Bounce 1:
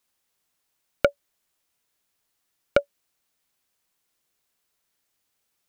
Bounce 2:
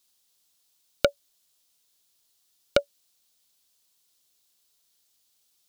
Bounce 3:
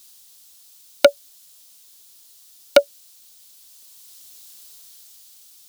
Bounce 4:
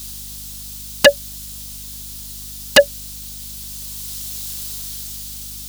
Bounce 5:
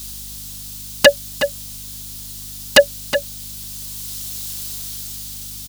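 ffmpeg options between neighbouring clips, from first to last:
-af "highshelf=f=2800:t=q:w=1.5:g=8.5,volume=0.841"
-af "highshelf=f=3900:g=7,apsyclip=5.31,dynaudnorm=f=300:g=7:m=1.68"
-af "aeval=exprs='0.891*sin(PI/2*4.47*val(0)/0.891)':c=same,aeval=exprs='val(0)+0.0126*(sin(2*PI*50*n/s)+sin(2*PI*2*50*n/s)/2+sin(2*PI*3*50*n/s)/3+sin(2*PI*4*50*n/s)/4+sin(2*PI*5*50*n/s)/5)':c=same,volume=0.891"
-filter_complex "[0:a]asplit=2[s0][s1];[s1]adelay=367.3,volume=0.355,highshelf=f=4000:g=-8.27[s2];[s0][s2]amix=inputs=2:normalize=0"

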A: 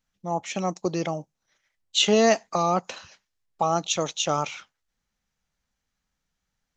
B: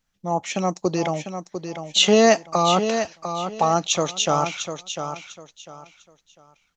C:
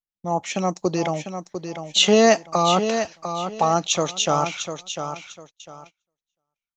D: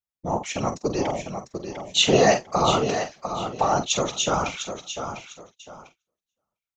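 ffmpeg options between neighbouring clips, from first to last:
-af "aecho=1:1:699|1398|2097:0.376|0.094|0.0235,volume=1.58"
-af "agate=range=0.0398:threshold=0.00631:ratio=16:detection=peak"
-filter_complex "[0:a]asplit=2[s0][s1];[s1]adelay=47,volume=0.316[s2];[s0][s2]amix=inputs=2:normalize=0,afftfilt=real='hypot(re,im)*cos(2*PI*random(0))':imag='hypot(re,im)*sin(2*PI*random(1))':win_size=512:overlap=0.75,volume=1.5"

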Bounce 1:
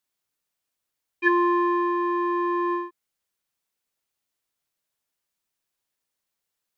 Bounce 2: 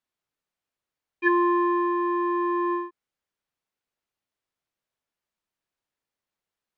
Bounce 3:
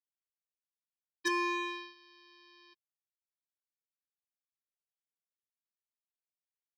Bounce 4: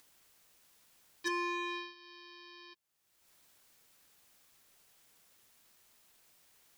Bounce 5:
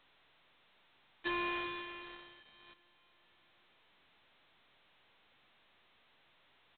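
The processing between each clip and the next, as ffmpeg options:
-af "lowpass=f=2300:p=1"
-af "aresample=11025,acrusher=bits=2:mix=0:aa=0.5,aresample=44100,asoftclip=type=tanh:threshold=0.0562"
-af "acompressor=mode=upward:threshold=0.00501:ratio=2.5,alimiter=level_in=2.24:limit=0.0631:level=0:latency=1,volume=0.447,volume=1.33"
-af "aecho=1:1:383|766|1149|1532:0.237|0.0996|0.0418|0.0176,volume=0.75" -ar 8000 -c:a adpcm_g726 -b:a 16k

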